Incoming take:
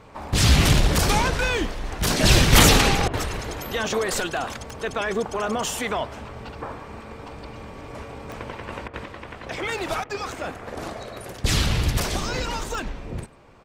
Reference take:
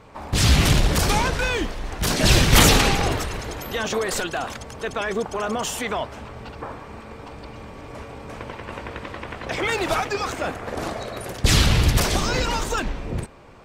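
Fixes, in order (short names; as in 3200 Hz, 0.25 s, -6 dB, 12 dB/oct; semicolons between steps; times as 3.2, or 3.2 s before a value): de-click; interpolate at 3.08/8.88/10.04, 54 ms; inverse comb 97 ms -24 dB; gain correction +4.5 dB, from 9.05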